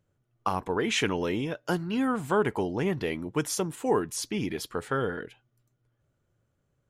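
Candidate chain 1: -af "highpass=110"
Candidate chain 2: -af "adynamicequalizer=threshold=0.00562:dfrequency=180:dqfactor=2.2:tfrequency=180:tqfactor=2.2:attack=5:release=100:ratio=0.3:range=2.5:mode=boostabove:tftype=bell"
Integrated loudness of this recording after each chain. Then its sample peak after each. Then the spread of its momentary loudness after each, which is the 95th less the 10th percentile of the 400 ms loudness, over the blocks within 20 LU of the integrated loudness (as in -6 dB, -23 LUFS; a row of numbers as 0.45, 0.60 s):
-29.5, -28.0 LUFS; -12.5, -12.5 dBFS; 6, 6 LU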